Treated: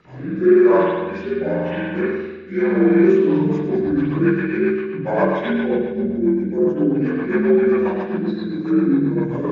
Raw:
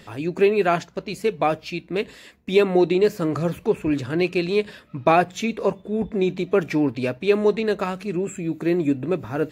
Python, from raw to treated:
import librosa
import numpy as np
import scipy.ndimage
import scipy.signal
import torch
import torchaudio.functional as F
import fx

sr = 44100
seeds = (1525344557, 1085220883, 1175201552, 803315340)

p1 = fx.partial_stretch(x, sr, pct=81)
p2 = fx.band_shelf(p1, sr, hz=2000.0, db=-13.5, octaves=2.5, at=(6.02, 6.89))
p3 = fx.rev_spring(p2, sr, rt60_s=1.3, pass_ms=(47,), chirp_ms=50, drr_db=-10.0)
p4 = 10.0 ** (-12.0 / 20.0) * np.tanh(p3 / 10.0 ** (-12.0 / 20.0))
p5 = p3 + (p4 * librosa.db_to_amplitude(-11.5))
p6 = fx.rotary_switch(p5, sr, hz=0.9, then_hz=7.5, switch_at_s=2.89)
p7 = p6 + fx.echo_single(p6, sr, ms=107, db=-12.5, dry=0)
y = p7 * librosa.db_to_amplitude(-5.5)